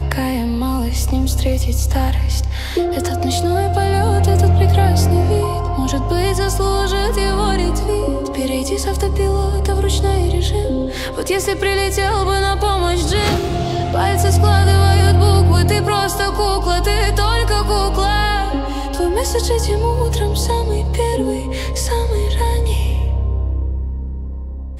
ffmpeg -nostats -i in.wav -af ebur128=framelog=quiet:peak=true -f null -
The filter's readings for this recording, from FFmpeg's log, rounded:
Integrated loudness:
  I:         -16.9 LUFS
  Threshold: -27.0 LUFS
Loudness range:
  LRA:         4.4 LU
  Threshold: -36.8 LUFS
  LRA low:   -18.6 LUFS
  LRA high:  -14.2 LUFS
True peak:
  Peak:       -1.5 dBFS